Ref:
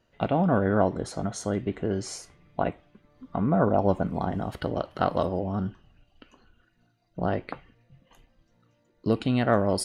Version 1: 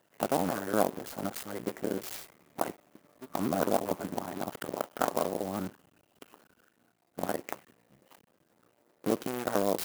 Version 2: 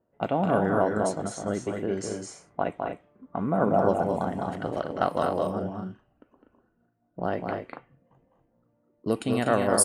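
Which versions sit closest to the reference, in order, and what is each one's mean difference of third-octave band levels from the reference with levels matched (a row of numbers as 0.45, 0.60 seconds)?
2, 1; 5.0, 11.0 decibels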